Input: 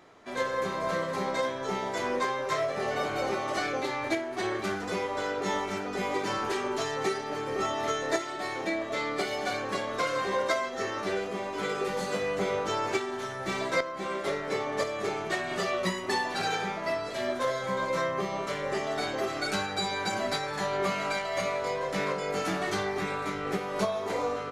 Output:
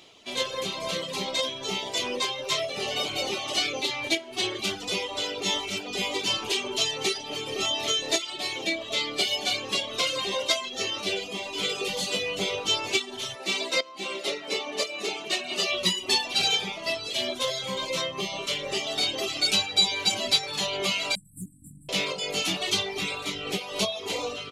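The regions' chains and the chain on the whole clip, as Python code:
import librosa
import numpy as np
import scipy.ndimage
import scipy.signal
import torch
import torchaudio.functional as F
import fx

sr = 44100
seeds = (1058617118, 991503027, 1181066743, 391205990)

y = fx.chain(x, sr, fx.highpass(hz=200.0, slope=24),
    fx.high_shelf(hz=8000.0, db=-4.0),
    fx.notch(hz=3300.0, q=12.0), at=(13.35, 15.7))
y = fx.chain(y, sr, fx.brickwall_bandstop(low_hz=300.0, high_hz=7600.0),
    fx.peak_eq(hz=170.0, db=8.5, octaves=0.23),
    fx.doppler_dist(depth_ms=0.19), at=(21.15, 21.89))
y = fx.dereverb_blind(y, sr, rt60_s=0.71)
y = fx.high_shelf_res(y, sr, hz=2200.0, db=10.0, q=3.0)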